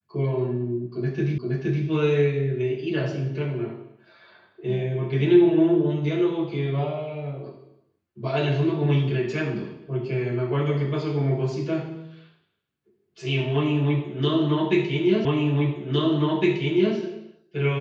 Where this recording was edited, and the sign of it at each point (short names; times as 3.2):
1.38 repeat of the last 0.47 s
15.25 repeat of the last 1.71 s